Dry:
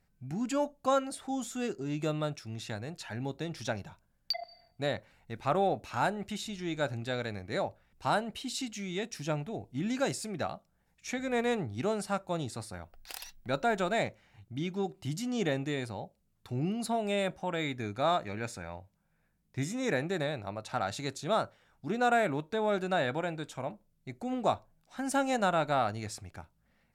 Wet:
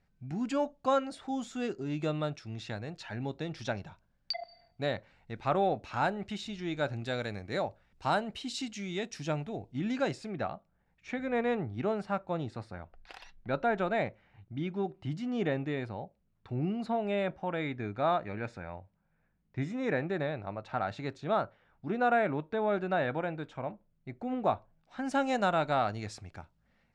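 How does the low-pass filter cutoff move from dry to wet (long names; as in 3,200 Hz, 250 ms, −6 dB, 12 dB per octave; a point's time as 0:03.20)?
0:06.94 4,800 Hz
0:07.17 11,000 Hz
0:07.62 6,400 Hz
0:09.42 6,400 Hz
0:10.54 2,500 Hz
0:24.54 2,500 Hz
0:25.36 5,600 Hz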